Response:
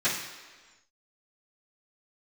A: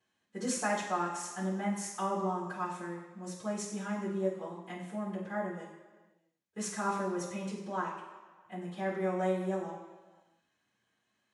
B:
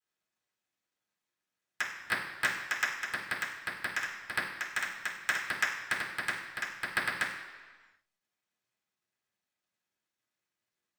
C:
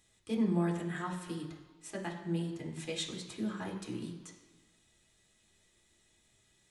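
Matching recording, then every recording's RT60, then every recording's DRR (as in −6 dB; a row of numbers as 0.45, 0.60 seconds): A; 1.4, 1.4, 1.4 seconds; −18.0, −8.0, −1.5 decibels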